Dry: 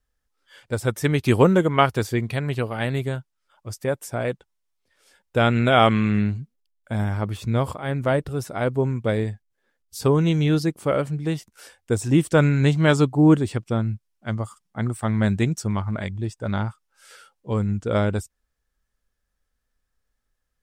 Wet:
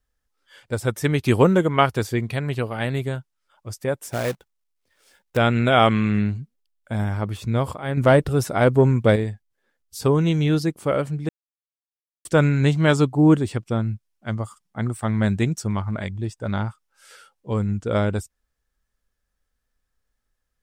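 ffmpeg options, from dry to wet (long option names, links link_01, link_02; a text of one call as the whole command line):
ffmpeg -i in.wav -filter_complex "[0:a]asettb=1/sr,asplit=3[link_01][link_02][link_03];[link_01]atrim=end=4.054[link_04];[link_02]atrim=start=4.05:end=5.37,asetpts=PTS-STARTPTS,afade=type=in:duration=0.004:curve=qsin,afade=type=out:start_time=1.316:duration=0.004:curve=qsin,acrusher=bits=2:mode=log:mix=0:aa=0.000001[link_05];[link_03]atrim=start=5.366[link_06];[link_04][link_05]acrossfade=duration=0.004:curve1=hsin:curve2=qsin[link_07];[link_07][link_06]acrossfade=duration=0.004:curve1=qsin:curve2=hsin,asettb=1/sr,asplit=3[link_08][link_09][link_10];[link_08]atrim=end=7.974[link_11];[link_09]atrim=start=7.97:end=9.16,asetpts=PTS-STARTPTS,afade=type=in:duration=0.004:curve=qsin,afade=type=out:start_time=1.186:duration=0.004:curve=qsin,acontrast=75[link_12];[link_10]atrim=start=9.156[link_13];[link_11][link_12]acrossfade=duration=0.004:curve1=hsin:curve2=qsin[link_14];[link_14][link_13]acrossfade=duration=0.004:curve1=qsin:curve2=hsin,asplit=3[link_15][link_16][link_17];[link_15]atrim=end=11.29,asetpts=PTS-STARTPTS,afade=type=out:start_time=11.286:duration=0.004:curve=hsin[link_18];[link_16]atrim=start=11.29:end=12.25,asetpts=PTS-STARTPTS,volume=0[link_19];[link_17]atrim=start=12.25,asetpts=PTS-STARTPTS,afade=type=in:duration=0.004:curve=hsin[link_20];[link_18][link_19][link_20]concat=n=3:v=0:a=1" out.wav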